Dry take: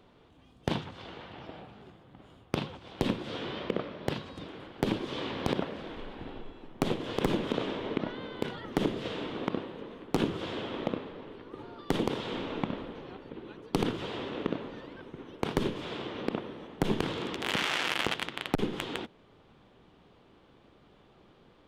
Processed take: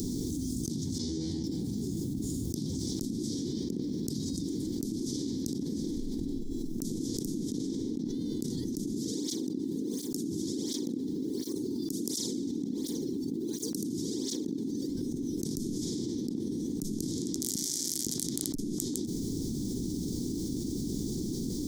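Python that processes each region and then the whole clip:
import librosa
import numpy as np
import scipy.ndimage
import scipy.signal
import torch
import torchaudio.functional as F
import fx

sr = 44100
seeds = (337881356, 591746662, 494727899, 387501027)

y = fx.chain(x, sr, fx.lowpass(hz=8100.0, slope=12),
    fx.comb_fb(f0_hz=80.0, decay_s=0.32, harmonics='all', damping=0.0, mix_pct=100), at=(0.98, 1.44))
y = fx.chain(y, sr, fx.high_shelf(hz=11000.0, db=5.0),
    fx.flanger_cancel(hz=1.4, depth_ms=1.9), at=(8.95, 14.89))
y = scipy.signal.sosfilt(scipy.signal.ellip(3, 1.0, 40, [280.0, 5800.0], 'bandstop', fs=sr, output='sos'), y)
y = fx.bass_treble(y, sr, bass_db=-12, treble_db=5)
y = fx.env_flatten(y, sr, amount_pct=100)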